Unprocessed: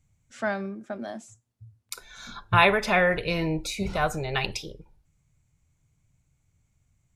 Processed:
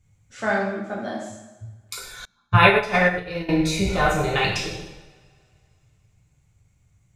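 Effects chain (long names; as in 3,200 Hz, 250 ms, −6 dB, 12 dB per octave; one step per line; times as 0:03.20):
high-shelf EQ 7,900 Hz −5 dB
coupled-rooms reverb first 0.91 s, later 2.8 s, from −26 dB, DRR −4.5 dB
0:02.25–0:03.49: expander for the loud parts 2.5 to 1, over −32 dBFS
level +1.5 dB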